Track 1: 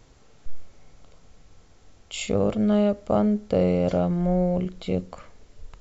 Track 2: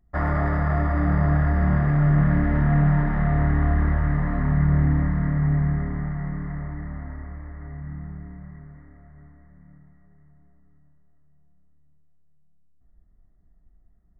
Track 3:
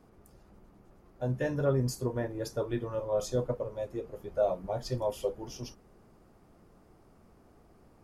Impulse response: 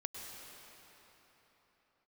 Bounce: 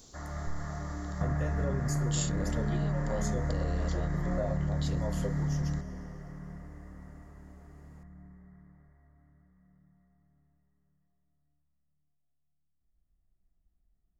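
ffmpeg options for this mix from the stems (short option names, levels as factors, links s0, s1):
-filter_complex "[0:a]alimiter=limit=0.168:level=0:latency=1,aexciter=amount=8.9:drive=3.8:freq=3400,volume=0.355[s0];[1:a]volume=0.447,asplit=2[s1][s2];[s2]volume=0.398[s3];[2:a]equalizer=f=6900:t=o:w=0.34:g=10.5,volume=0.708,asplit=3[s4][s5][s6];[s5]volume=0.355[s7];[s6]apad=whole_len=626095[s8];[s1][s8]sidechaingate=range=0.0224:threshold=0.002:ratio=16:detection=peak[s9];[3:a]atrim=start_sample=2205[s10];[s3][s7]amix=inputs=2:normalize=0[s11];[s11][s10]afir=irnorm=-1:irlink=0[s12];[s0][s9][s4][s12]amix=inputs=4:normalize=0,acompressor=threshold=0.0447:ratio=6"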